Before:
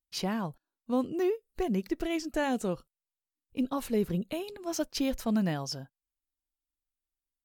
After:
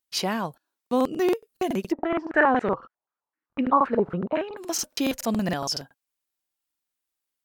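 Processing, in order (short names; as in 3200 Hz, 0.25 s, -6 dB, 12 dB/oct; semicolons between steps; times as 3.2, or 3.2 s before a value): HPF 390 Hz 6 dB/oct; crackling interface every 0.14 s, samples 2048, repeat, from 0.82; 1.92–4.57 stepped low-pass 7.8 Hz 840–1900 Hz; gain +8.5 dB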